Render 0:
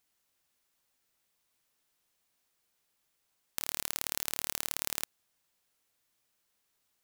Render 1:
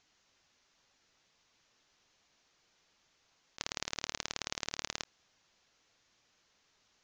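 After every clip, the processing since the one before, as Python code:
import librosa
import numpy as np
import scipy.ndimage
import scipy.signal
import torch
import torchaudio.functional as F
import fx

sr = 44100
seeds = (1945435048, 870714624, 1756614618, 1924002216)

y = fx.spec_gate(x, sr, threshold_db=-15, keep='strong')
y = scipy.signal.sosfilt(scipy.signal.butter(12, 6800.0, 'lowpass', fs=sr, output='sos'), y)
y = fx.over_compress(y, sr, threshold_db=-47.0, ratio=-0.5)
y = y * 10.0 ** (5.0 / 20.0)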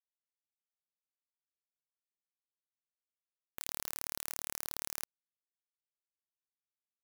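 y = fx.transient(x, sr, attack_db=-4, sustain_db=9)
y = (np.mod(10.0 ** (33.5 / 20.0) * y + 1.0, 2.0) - 1.0) / 10.0 ** (33.5 / 20.0)
y = fx.quant_dither(y, sr, seeds[0], bits=6, dither='none')
y = y * 10.0 ** (11.0 / 20.0)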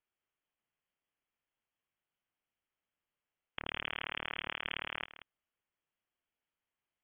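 y = fx.freq_invert(x, sr, carrier_hz=3300)
y = y + 10.0 ** (-13.5 / 20.0) * np.pad(y, (int(182 * sr / 1000.0), 0))[:len(y)]
y = y * 10.0 ** (9.5 / 20.0)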